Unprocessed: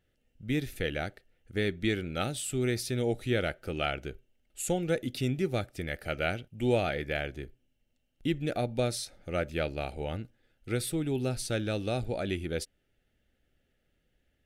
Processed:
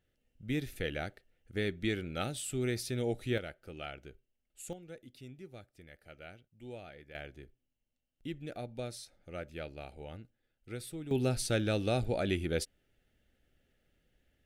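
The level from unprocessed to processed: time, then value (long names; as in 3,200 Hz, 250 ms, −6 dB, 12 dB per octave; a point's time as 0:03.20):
−4 dB
from 0:03.38 −12 dB
from 0:04.73 −19.5 dB
from 0:07.15 −11 dB
from 0:11.11 +0.5 dB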